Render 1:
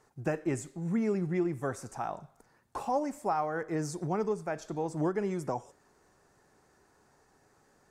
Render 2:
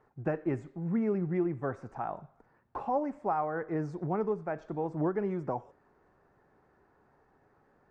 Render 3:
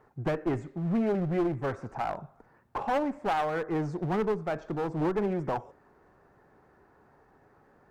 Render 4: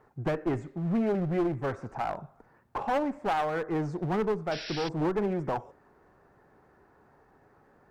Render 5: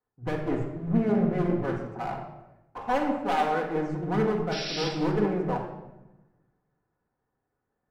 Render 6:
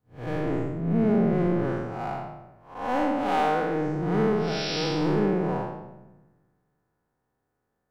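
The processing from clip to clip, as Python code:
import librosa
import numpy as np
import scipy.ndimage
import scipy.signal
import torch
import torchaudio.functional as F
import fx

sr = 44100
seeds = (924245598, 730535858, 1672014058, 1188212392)

y1 = scipy.signal.sosfilt(scipy.signal.butter(2, 1800.0, 'lowpass', fs=sr, output='sos'), x)
y2 = fx.clip_asym(y1, sr, top_db=-34.0, bottom_db=-25.0)
y2 = F.gain(torch.from_numpy(y2), 5.5).numpy()
y3 = fx.spec_paint(y2, sr, seeds[0], shape='noise', start_s=4.51, length_s=0.38, low_hz=1400.0, high_hz=5800.0, level_db=-40.0)
y4 = fx.room_shoebox(y3, sr, seeds[1], volume_m3=1600.0, walls='mixed', distance_m=1.9)
y4 = fx.band_widen(y4, sr, depth_pct=70)
y4 = F.gain(torch.from_numpy(y4), -1.5).numpy()
y5 = fx.spec_blur(y4, sr, span_ms=171.0)
y5 = F.gain(torch.from_numpy(y5), 4.0).numpy()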